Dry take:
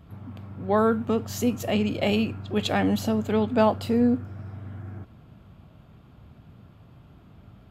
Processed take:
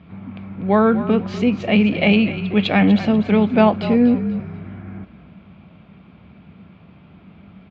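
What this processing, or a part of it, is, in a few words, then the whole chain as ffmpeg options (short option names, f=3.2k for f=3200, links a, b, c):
frequency-shifting delay pedal into a guitar cabinet: -filter_complex "[0:a]asplit=4[a][b][c][d];[b]adelay=244,afreqshift=-38,volume=-13dB[e];[c]adelay=488,afreqshift=-76,volume=-22.9dB[f];[d]adelay=732,afreqshift=-114,volume=-32.8dB[g];[a][e][f][g]amix=inputs=4:normalize=0,highpass=85,equalizer=f=120:t=q:w=4:g=-9,equalizer=f=190:t=q:w=4:g=9,equalizer=f=2.3k:t=q:w=4:g=10,lowpass=f=4.1k:w=0.5412,lowpass=f=4.1k:w=1.3066,volume=5dB"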